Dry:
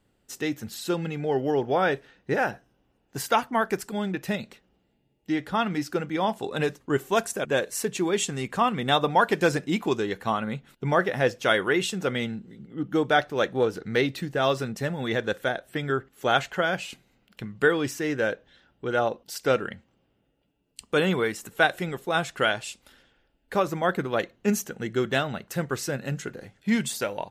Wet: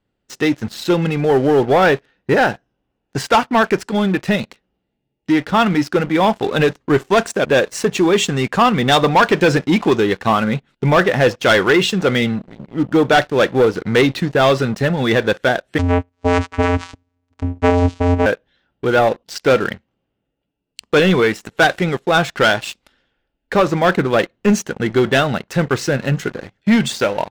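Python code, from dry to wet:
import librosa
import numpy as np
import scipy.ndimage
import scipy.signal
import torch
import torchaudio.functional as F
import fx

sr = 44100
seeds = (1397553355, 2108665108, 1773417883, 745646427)

y = scipy.signal.sosfilt(scipy.signal.butter(2, 5100.0, 'lowpass', fs=sr, output='sos'), x)
y = fx.leveller(y, sr, passes=3)
y = fx.vocoder(y, sr, bands=4, carrier='square', carrier_hz=88.1, at=(15.78, 18.26))
y = y * 10.0 ** (1.5 / 20.0)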